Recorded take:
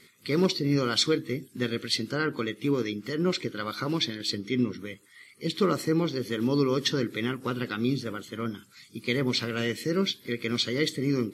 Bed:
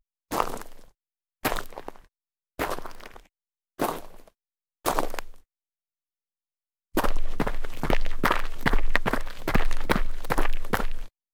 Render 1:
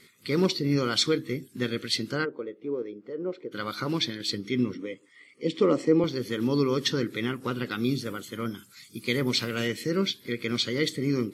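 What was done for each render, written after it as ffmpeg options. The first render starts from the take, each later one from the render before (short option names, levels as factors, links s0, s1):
-filter_complex "[0:a]asplit=3[s0][s1][s2];[s0]afade=t=out:st=2.24:d=0.02[s3];[s1]bandpass=f=500:t=q:w=2.1,afade=t=in:st=2.24:d=0.02,afade=t=out:st=3.51:d=0.02[s4];[s2]afade=t=in:st=3.51:d=0.02[s5];[s3][s4][s5]amix=inputs=3:normalize=0,asettb=1/sr,asplit=3[s6][s7][s8];[s6]atrim=end=4.744[s9];[s7]atrim=start=4.74:end=6.04,asetpts=PTS-STARTPTS,afade=t=in:d=0.004:c=qsin,afade=t=out:st=1.296:d=0.004:c=qsin,highpass=f=140:w=0.5412,highpass=f=140:w=1.3066,equalizer=f=200:t=q:w=4:g=-5,equalizer=f=280:t=q:w=4:g=8,equalizer=f=510:t=q:w=4:g=8,equalizer=f=1500:t=q:w=4:g=-9,equalizer=f=4100:t=q:w=4:g=-10,equalizer=f=6200:t=q:w=4:g=-5,lowpass=f=7300:w=0.5412,lowpass=f=7300:w=1.3066[s10];[s8]atrim=start=6.036[s11];[s9][s10]acrossfade=d=0.004:c1=hsin:c2=qsin[s12];[s12][s11]acrossfade=d=0.004:c1=qsin:c2=hsin,asettb=1/sr,asplit=3[s13][s14][s15];[s13]atrim=end=7.714[s16];[s14]atrim=start=7.71:end=9.68,asetpts=PTS-STARTPTS,afade=t=in:d=0.004:c=qsin,afade=t=out:st=1.966:d=0.004:c=qsin,highshelf=f=7900:g=9.5[s17];[s15]atrim=start=9.676[s18];[s16][s17]acrossfade=d=0.004:c1=hsin:c2=qsin[s19];[s19][s18]acrossfade=d=0.004:c1=qsin:c2=hsin"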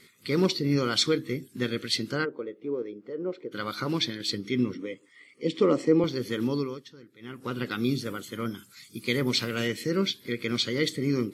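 -filter_complex "[0:a]asplit=3[s0][s1][s2];[s0]atrim=end=6.83,asetpts=PTS-STARTPTS,afade=t=out:st=6.4:d=0.43:silence=0.0749894[s3];[s1]atrim=start=6.83:end=7.19,asetpts=PTS-STARTPTS,volume=0.075[s4];[s2]atrim=start=7.19,asetpts=PTS-STARTPTS,afade=t=in:d=0.43:silence=0.0749894[s5];[s3][s4][s5]concat=n=3:v=0:a=1"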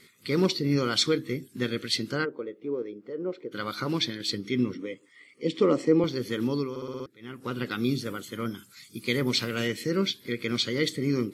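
-filter_complex "[0:a]asplit=7[s0][s1][s2][s3][s4][s5][s6];[s0]atrim=end=6.762[s7];[s1]atrim=start=6.698:end=6.762[s8];[s2]atrim=start=6.698:end=6.762[s9];[s3]atrim=start=6.698:end=6.762[s10];[s4]atrim=start=6.698:end=6.762[s11];[s5]atrim=start=6.698:end=6.762[s12];[s6]atrim=start=7.058[s13];[s7][s8]acrossfade=d=0.004:c1=hsin:c2=hsin[s14];[s14][s9]acrossfade=d=0.004:c1=hsin:c2=hsin[s15];[s15][s10]acrossfade=d=0.004:c1=hsin:c2=hsin[s16];[s16][s11]acrossfade=d=0.004:c1=hsin:c2=hsin[s17];[s17][s12]acrossfade=d=0.004:c1=hsin:c2=hsin[s18];[s18][s13]acrossfade=d=0.004:c1=hsin:c2=hsin"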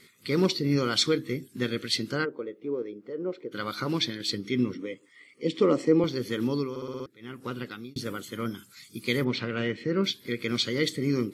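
-filter_complex "[0:a]asettb=1/sr,asplit=3[s0][s1][s2];[s0]atrim=end=9.244[s3];[s1]atrim=start=9.24:end=10.04,asetpts=PTS-STARTPTS,afade=t=in:d=0.004:c=qsin,afade=t=out:st=0.796:d=0.004:c=qsin,lowpass=2600[s4];[s2]atrim=start=10.036[s5];[s3][s4]acrossfade=d=0.004:c1=hsin:c2=qsin[s6];[s6][s5]acrossfade=d=0.004:c1=qsin:c2=hsin,asplit=2[s7][s8];[s7]atrim=end=7.96,asetpts=PTS-STARTPTS,afade=t=out:st=7.4:d=0.56[s9];[s8]atrim=start=7.96,asetpts=PTS-STARTPTS,afade=t=in:d=0.004:c=hsin[s10];[s9][s10]concat=n=2:v=0:a=1"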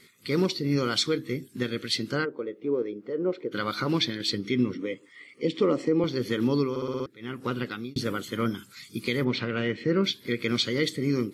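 -filter_complex "[0:a]acrossover=split=5100[s0][s1];[s0]dynaudnorm=f=920:g=5:m=1.88[s2];[s2][s1]amix=inputs=2:normalize=0,alimiter=limit=0.2:level=0:latency=1:release=386"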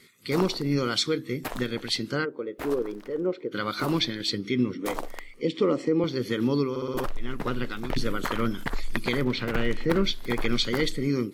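-filter_complex "[1:a]volume=0.398[s0];[0:a][s0]amix=inputs=2:normalize=0"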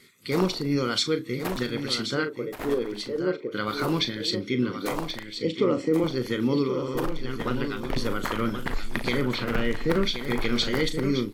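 -filter_complex "[0:a]asplit=2[s0][s1];[s1]adelay=38,volume=0.299[s2];[s0][s2]amix=inputs=2:normalize=0,aecho=1:1:1078:0.376"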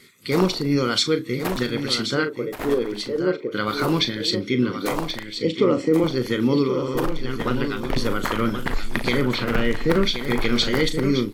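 -af "volume=1.68"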